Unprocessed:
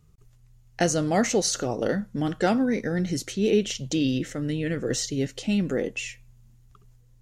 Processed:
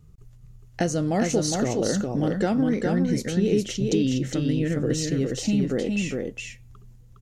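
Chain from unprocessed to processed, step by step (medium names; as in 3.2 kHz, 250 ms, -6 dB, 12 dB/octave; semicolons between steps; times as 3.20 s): bass shelf 480 Hz +7.5 dB; compression 2:1, threshold -24 dBFS, peak gain reduction 7.5 dB; on a send: delay 411 ms -3.5 dB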